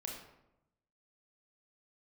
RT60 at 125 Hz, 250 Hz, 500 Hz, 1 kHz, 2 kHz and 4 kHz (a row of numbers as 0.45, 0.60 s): 1.2, 1.1, 0.90, 0.85, 0.65, 0.50 s